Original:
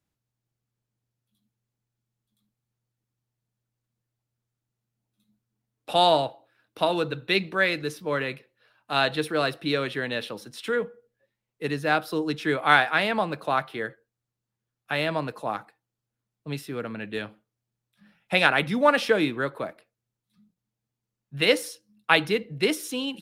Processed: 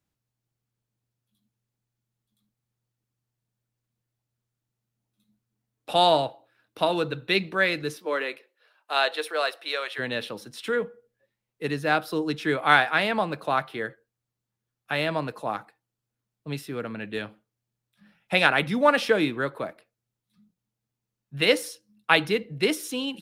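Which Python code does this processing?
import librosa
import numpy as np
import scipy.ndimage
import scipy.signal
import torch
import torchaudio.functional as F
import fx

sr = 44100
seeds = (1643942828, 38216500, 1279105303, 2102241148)

y = fx.highpass(x, sr, hz=fx.line((7.96, 280.0), (9.98, 600.0)), slope=24, at=(7.96, 9.98), fade=0.02)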